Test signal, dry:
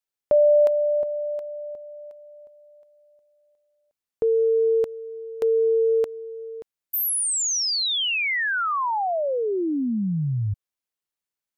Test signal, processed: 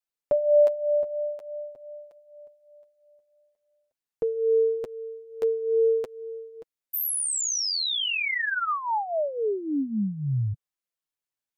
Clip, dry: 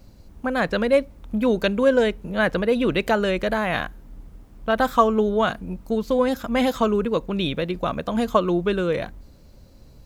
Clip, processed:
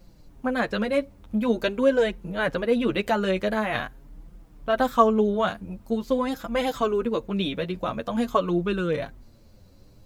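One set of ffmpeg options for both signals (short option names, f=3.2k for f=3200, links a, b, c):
-af "flanger=delay=5.6:depth=5.2:regen=11:speed=0.46:shape=triangular"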